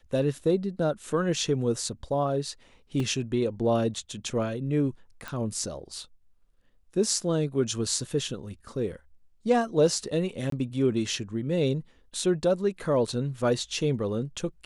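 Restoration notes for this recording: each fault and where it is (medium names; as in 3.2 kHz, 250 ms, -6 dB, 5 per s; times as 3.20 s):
3.00 s: dropout 2.4 ms
5.28 s: pop
10.50–10.52 s: dropout 23 ms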